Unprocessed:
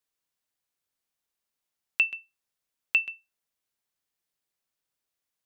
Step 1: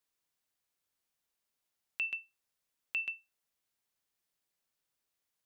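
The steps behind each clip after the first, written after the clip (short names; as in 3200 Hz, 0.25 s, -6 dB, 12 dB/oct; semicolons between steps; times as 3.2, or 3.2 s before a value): compressor, threshold -24 dBFS, peak gain reduction 6 dB; limiter -23.5 dBFS, peak gain reduction 11 dB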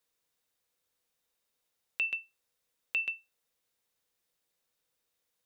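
small resonant body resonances 490/3700 Hz, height 11 dB, ringing for 75 ms; gain +3.5 dB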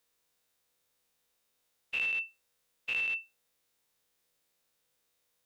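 spectral dilation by 0.12 s; in parallel at +1.5 dB: limiter -27.5 dBFS, peak gain reduction 10.5 dB; on the sum: gain -7.5 dB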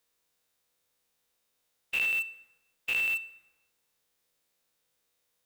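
in parallel at -6 dB: bit-crush 6-bit; on the sum: reverb RT60 1.3 s, pre-delay 38 ms, DRR 18 dB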